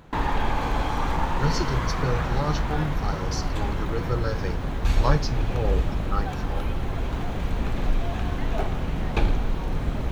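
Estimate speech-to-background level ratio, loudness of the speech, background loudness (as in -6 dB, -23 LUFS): -2.5 dB, -30.5 LUFS, -28.0 LUFS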